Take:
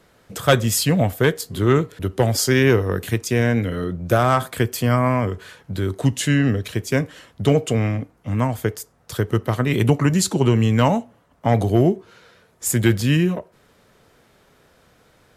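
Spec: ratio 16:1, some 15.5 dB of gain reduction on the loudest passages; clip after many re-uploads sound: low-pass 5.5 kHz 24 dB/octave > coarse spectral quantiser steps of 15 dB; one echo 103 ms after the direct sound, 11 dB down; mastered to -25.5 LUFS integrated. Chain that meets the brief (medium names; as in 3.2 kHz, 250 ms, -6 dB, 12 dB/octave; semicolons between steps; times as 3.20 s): compression 16:1, threshold -26 dBFS; low-pass 5.5 kHz 24 dB/octave; delay 103 ms -11 dB; coarse spectral quantiser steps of 15 dB; trim +7 dB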